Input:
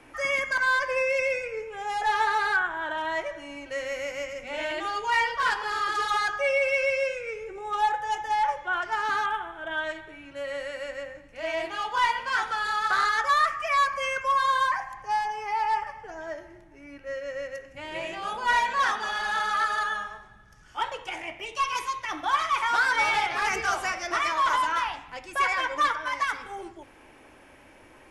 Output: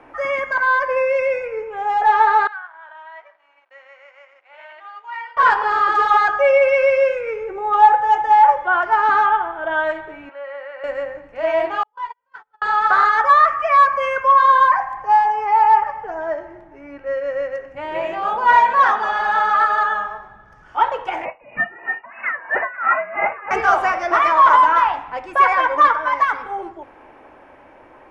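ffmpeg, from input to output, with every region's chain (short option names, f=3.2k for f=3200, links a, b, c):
-filter_complex "[0:a]asettb=1/sr,asplit=3[a][b][c];[a]atrim=end=2.474[d];[b]atrim=start=2.47:end=5.37,asetpts=PTS-STARTPTS,afade=t=in:d=0.004:c=qsin,afade=t=out:st=2.896:d=0.004:c=qsin,aderivative,aeval=exprs='sgn(val(0))*max(abs(val(0))-0.00141,0)':c=same,highpass=600,lowpass=2.2k[e];[c]atrim=start=5.366[f];[d][e]acrossfade=d=0.004:c1=hsin:c2=qsin[g];[g][f]acrossfade=d=0.004:c1=qsin:c2=hsin,asettb=1/sr,asplit=3[h][i][j];[h]atrim=end=10.294[k];[i]atrim=start=10.29:end=10.84,asetpts=PTS-STARTPTS,afade=t=in:d=0.004:c=qsin,afade=t=out:st=0.546:d=0.004:c=qsin,highpass=690,lowpass=2.7k,acompressor=threshold=-48dB:ratio=1.5:attack=3.2:release=140:knee=1:detection=peak[l];[j]atrim=start=10.836[m];[k][l]acrossfade=d=0.004:c1=hsin:c2=qsin[n];[n][m]acrossfade=d=0.004:c1=qsin:c2=hsin,asettb=1/sr,asplit=3[o][p][q];[o]atrim=end=11.834[r];[p]atrim=start=11.83:end=12.62,asetpts=PTS-STARTPTS,afade=t=in:d=0.004:c=qsin,afade=t=out:st=0.786:d=0.004:c=qsin,agate=range=-51dB:threshold=-23dB:ratio=16:release=100:detection=peak,aecho=1:1:7.1:0.65,atrim=end_sample=34839,acompressor=threshold=-50dB:ratio=2:attack=3.2:release=140:knee=1:detection=peak[s];[q]atrim=start=12.616[t];[r][s]acrossfade=d=0.004:c1=hsin:c2=qsin[u];[u][t]acrossfade=d=0.004:c1=qsin:c2=hsin,asettb=1/sr,asplit=3[v][w][x];[v]atrim=end=21.254[y];[w]atrim=start=21.25:end=23.51,asetpts=PTS-STARTPTS,afade=t=in:d=0.004:c=qsin,afade=t=out:st=2.256:d=0.004:c=qsin,lowpass=f=2.5k:t=q:w=0.5098,lowpass=f=2.5k:t=q:w=0.6013,lowpass=f=2.5k:t=q:w=0.9,lowpass=f=2.5k:t=q:w=2.563,afreqshift=-2900,aeval=exprs='val(0)*pow(10,-20*(0.5-0.5*cos(2*PI*3*n/s))/20)':c=same[z];[x]atrim=start=23.506[aa];[y][z]acrossfade=d=0.004:c1=hsin:c2=qsin[ab];[ab][aa]acrossfade=d=0.004:c1=qsin:c2=hsin,equalizer=f=860:t=o:w=2.6:g=11.5,dynaudnorm=f=260:g=17:m=11.5dB,lowpass=f=1.6k:p=1"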